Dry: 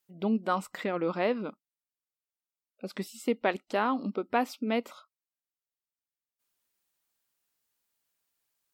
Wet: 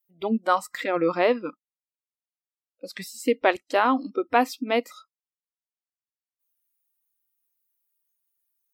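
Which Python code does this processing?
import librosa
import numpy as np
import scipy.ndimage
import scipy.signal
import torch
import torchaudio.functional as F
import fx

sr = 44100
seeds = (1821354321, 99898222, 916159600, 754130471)

y = fx.noise_reduce_blind(x, sr, reduce_db=18)
y = F.gain(torch.from_numpy(y), 7.5).numpy()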